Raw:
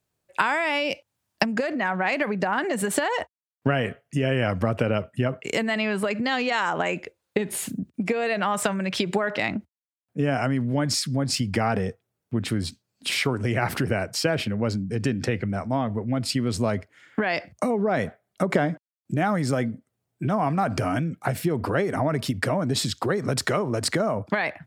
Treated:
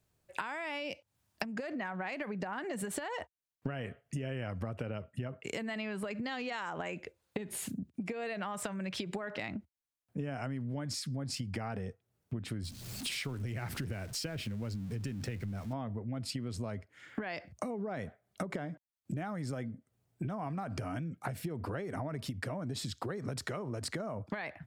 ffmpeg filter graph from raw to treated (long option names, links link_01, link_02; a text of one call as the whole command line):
ffmpeg -i in.wav -filter_complex "[0:a]asettb=1/sr,asplit=3[link_01][link_02][link_03];[link_01]atrim=end=12.634[link_04];[link_02]atrim=start=12.63:end=15.73,asetpts=PTS-STARTPTS,afade=type=in:duration=0.004:curve=qsin,afade=type=out:start_time=3.096:duration=0.004:curve=qsin,aeval=exprs='val(0)+0.5*0.0168*sgn(val(0))':channel_layout=same,equalizer=frequency=730:width=0.45:gain=-6.5[link_05];[link_03]atrim=start=15.726[link_06];[link_04][link_05]acrossfade=duration=0.004:curve1=hsin:curve2=qsin[link_07];[link_07][link_06]acrossfade=duration=0.004:curve1=qsin:curve2=hsin,lowshelf=frequency=100:gain=10,acompressor=threshold=-37dB:ratio=5" out.wav